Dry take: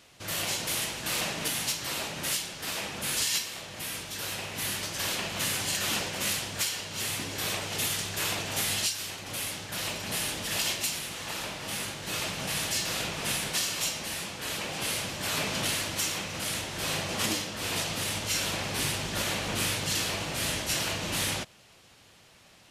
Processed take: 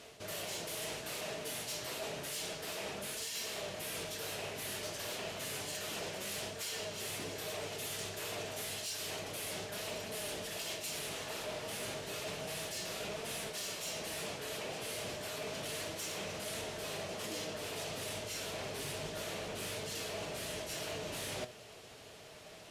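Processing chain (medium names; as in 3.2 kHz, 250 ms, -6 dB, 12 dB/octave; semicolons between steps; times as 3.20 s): small resonant body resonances 440/620 Hz, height 12 dB, ringing for 45 ms; reverse; compression 20:1, threshold -38 dBFS, peak gain reduction 16 dB; reverse; flange 0.3 Hz, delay 4.2 ms, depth 4.4 ms, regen +81%; Chebyshev shaper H 5 -16 dB, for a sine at -29.5 dBFS; trim +1 dB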